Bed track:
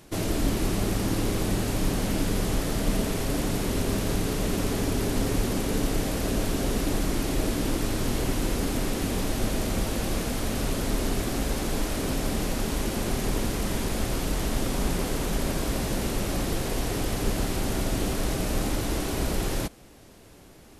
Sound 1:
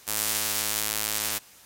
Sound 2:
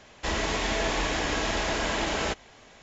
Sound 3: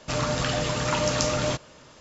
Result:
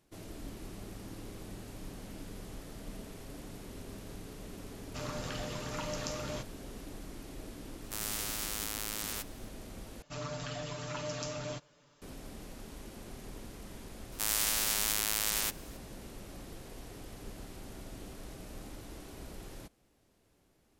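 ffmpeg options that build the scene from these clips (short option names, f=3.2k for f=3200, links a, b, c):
-filter_complex "[3:a]asplit=2[a][b];[1:a]asplit=2[c][d];[0:a]volume=-19.5dB[e];[c]equalizer=f=1.3k:w=7.7:g=3[f];[b]aecho=1:1:6.9:0.84[g];[d]lowshelf=f=310:g=-10[h];[e]asplit=2[i][j];[i]atrim=end=10.024[k];[g]atrim=end=2,asetpts=PTS-STARTPTS,volume=-17dB[l];[j]atrim=start=12.016[m];[a]atrim=end=2,asetpts=PTS-STARTPTS,volume=-14dB,afade=t=in:d=0.004:c=hsin,afade=t=out:st=1.996:d=0.004:c=hsin,adelay=4860[n];[f]atrim=end=1.65,asetpts=PTS-STARTPTS,volume=-10dB,afade=t=in:d=0.004:c=hsin,afade=t=out:st=1.646:d=0.004:c=hsin,adelay=7840[o];[h]atrim=end=1.65,asetpts=PTS-STARTPTS,volume=-3.5dB,afade=t=in:d=0.004:c=hsin,afade=t=out:st=1.646:d=0.004:c=hsin,adelay=622692S[p];[k][l]acrossfade=d=0.004:c1=hsin:c2=hsin[q];[q][m]acrossfade=d=0.004:c1=hsin:c2=hsin[r];[r][n][o][p]amix=inputs=4:normalize=0"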